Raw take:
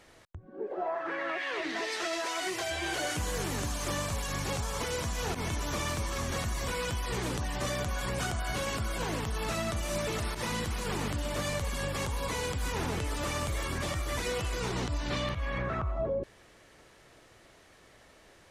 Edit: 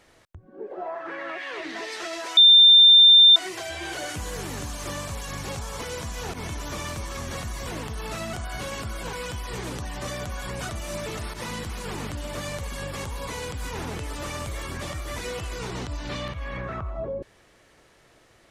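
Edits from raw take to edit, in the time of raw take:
2.37 s: add tone 3.59 kHz -9 dBFS 0.99 s
6.72–8.28 s: swap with 9.08–9.70 s

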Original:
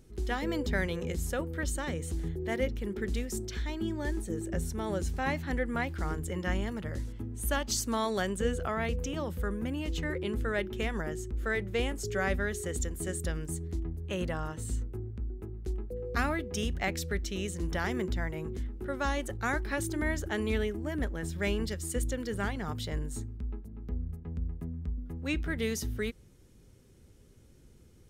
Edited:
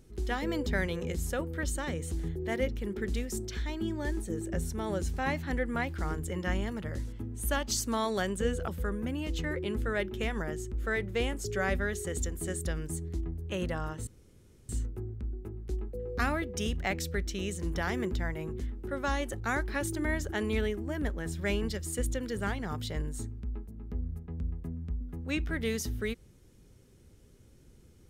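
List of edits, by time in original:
8.68–9.27 s: delete
14.66 s: insert room tone 0.62 s

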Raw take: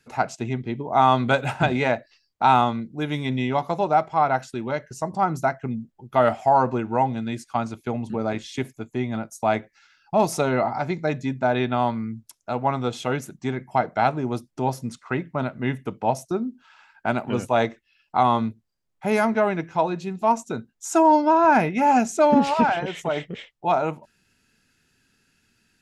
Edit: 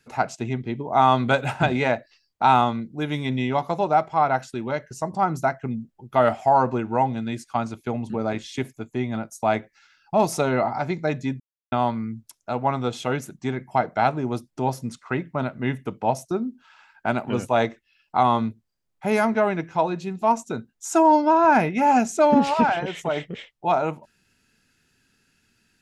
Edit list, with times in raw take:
11.40–11.72 s: mute

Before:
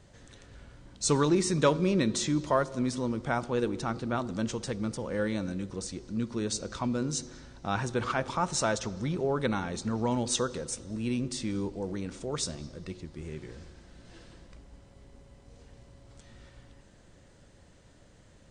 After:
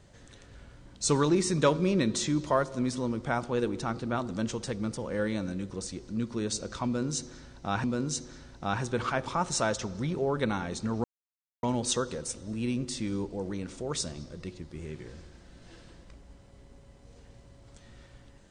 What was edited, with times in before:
6.86–7.84 s: loop, 2 plays
10.06 s: insert silence 0.59 s

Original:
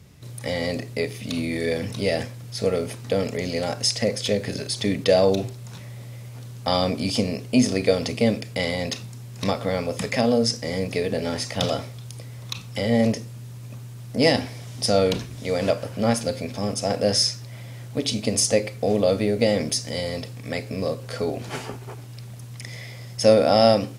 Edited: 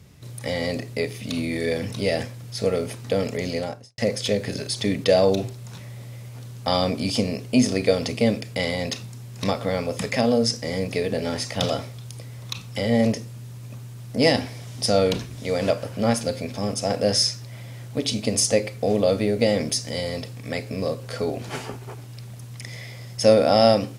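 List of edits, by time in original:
3.49–3.98 s: studio fade out

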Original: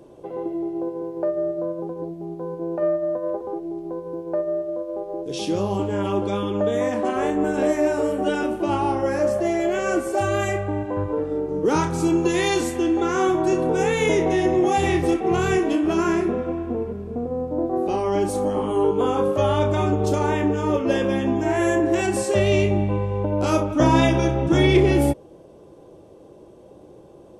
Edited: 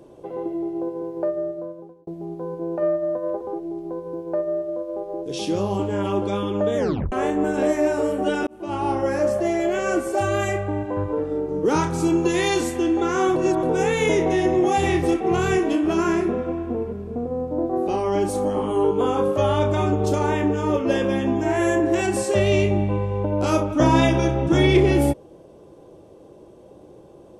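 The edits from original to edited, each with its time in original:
1.23–2.07 s: fade out
6.77 s: tape stop 0.35 s
8.47–8.92 s: fade in
13.36–13.63 s: reverse

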